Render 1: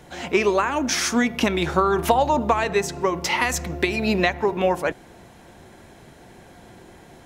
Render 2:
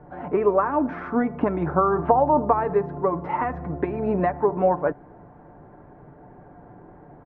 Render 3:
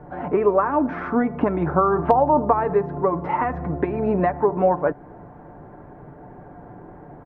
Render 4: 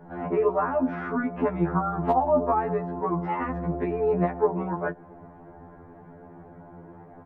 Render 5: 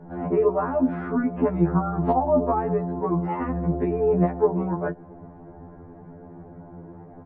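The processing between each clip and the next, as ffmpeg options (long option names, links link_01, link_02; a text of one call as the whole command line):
ffmpeg -i in.wav -af "lowpass=frequency=1300:width=0.5412,lowpass=frequency=1300:width=1.3066,aecho=1:1:6.8:0.41" out.wav
ffmpeg -i in.wav -filter_complex "[0:a]asplit=2[link_01][link_02];[link_02]acompressor=threshold=-28dB:ratio=6,volume=-2.5dB[link_03];[link_01][link_03]amix=inputs=2:normalize=0,asoftclip=type=hard:threshold=-4dB" out.wav
ffmpeg -i in.wav -af "afftfilt=real='re*2*eq(mod(b,4),0)':imag='im*2*eq(mod(b,4),0)':win_size=2048:overlap=0.75,volume=-2dB" out.wav
ffmpeg -i in.wav -af "tiltshelf=frequency=760:gain=5.5" -ar 16000 -c:a wmav2 -b:a 128k out.wma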